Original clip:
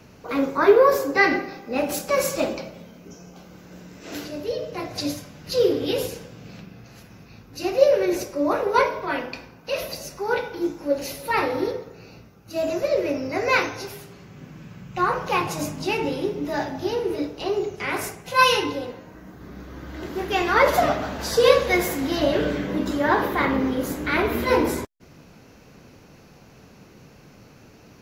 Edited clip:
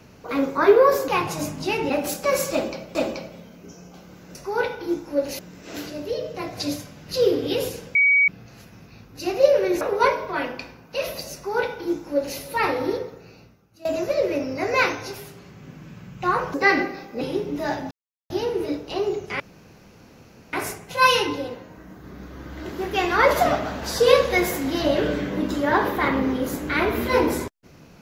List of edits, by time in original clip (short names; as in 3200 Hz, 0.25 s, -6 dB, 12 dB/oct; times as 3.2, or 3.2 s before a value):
1.08–1.75 swap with 15.28–16.1
2.37–2.8 loop, 2 plays
6.33–6.66 bleep 2260 Hz -13.5 dBFS
8.19–8.55 cut
10.08–11.12 copy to 3.77
11.85–12.59 fade out, to -18.5 dB
16.8 insert silence 0.39 s
17.9 insert room tone 1.13 s